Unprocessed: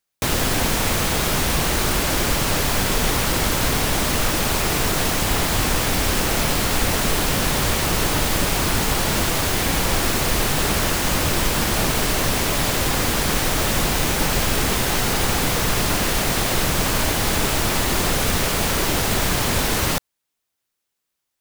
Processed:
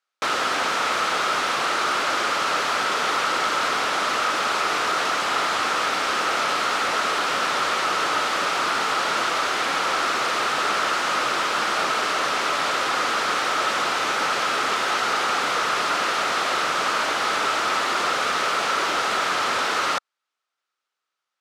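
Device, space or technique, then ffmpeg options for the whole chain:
intercom: -af "highpass=480,lowpass=4.9k,equalizer=f=1.3k:t=o:w=0.34:g=11.5,asoftclip=type=tanh:threshold=-12.5dB"

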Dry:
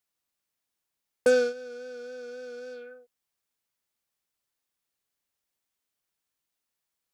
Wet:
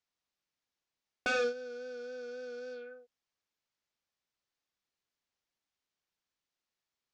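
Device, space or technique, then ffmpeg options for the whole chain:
synthesiser wavefolder: -af "aeval=exprs='0.075*(abs(mod(val(0)/0.075+3,4)-2)-1)':c=same,lowpass=f=6.4k:w=0.5412,lowpass=f=6.4k:w=1.3066,volume=-2.5dB"

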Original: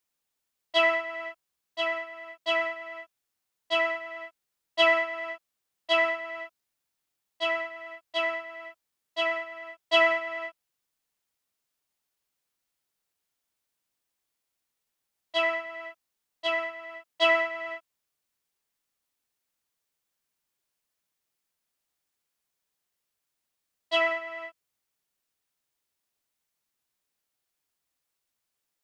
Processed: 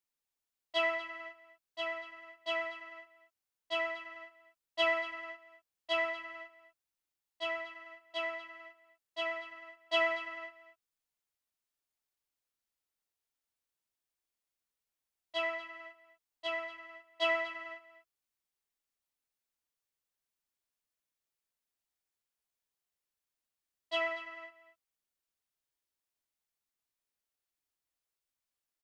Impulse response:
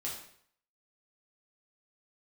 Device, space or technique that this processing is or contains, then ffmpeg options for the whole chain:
low shelf boost with a cut just above: -af "lowshelf=f=77:g=5.5,equalizer=f=160:t=o:w=0.72:g=-3.5,aecho=1:1:239:0.178,volume=-8.5dB"

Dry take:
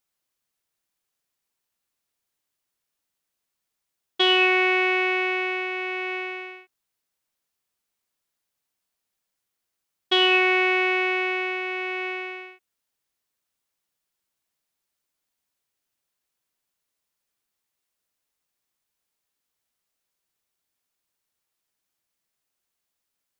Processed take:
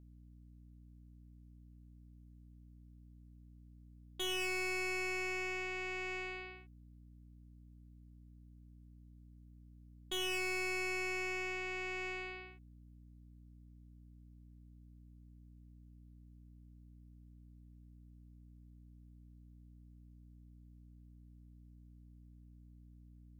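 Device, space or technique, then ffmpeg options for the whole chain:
valve amplifier with mains hum: -af "aeval=exprs='(tanh(22.4*val(0)+0.75)-tanh(0.75))/22.4':c=same,aeval=exprs='val(0)+0.00398*(sin(2*PI*60*n/s)+sin(2*PI*2*60*n/s)/2+sin(2*PI*3*60*n/s)/3+sin(2*PI*4*60*n/s)/4+sin(2*PI*5*60*n/s)/5)':c=same,volume=-8.5dB"

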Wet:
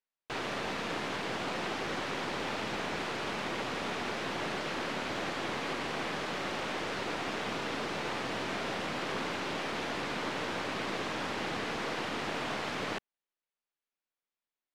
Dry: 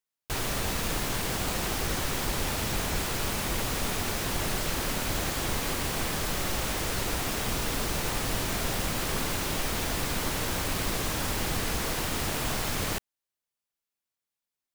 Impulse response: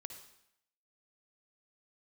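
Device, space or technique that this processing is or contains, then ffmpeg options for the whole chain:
crystal radio: -af "highpass=220,lowpass=3.3k,aeval=exprs='if(lt(val(0),0),0.708*val(0),val(0))':c=same"

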